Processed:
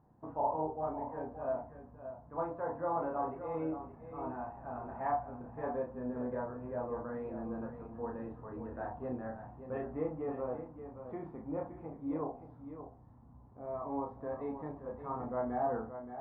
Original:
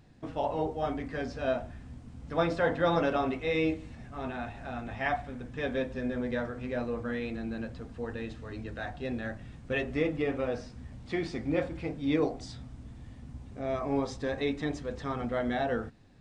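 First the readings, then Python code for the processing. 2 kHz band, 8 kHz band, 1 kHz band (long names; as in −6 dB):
−17.0 dB, can't be measured, −1.5 dB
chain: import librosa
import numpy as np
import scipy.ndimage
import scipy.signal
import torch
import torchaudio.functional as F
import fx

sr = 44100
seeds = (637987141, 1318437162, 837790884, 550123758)

y = fx.ladder_lowpass(x, sr, hz=1100.0, resonance_pct=60)
y = fx.rider(y, sr, range_db=5, speed_s=2.0)
y = fx.highpass(y, sr, hz=84.0, slope=6)
y = fx.doubler(y, sr, ms=32.0, db=-4.5)
y = y + 10.0 ** (-10.0 / 20.0) * np.pad(y, (int(574 * sr / 1000.0), 0))[:len(y)]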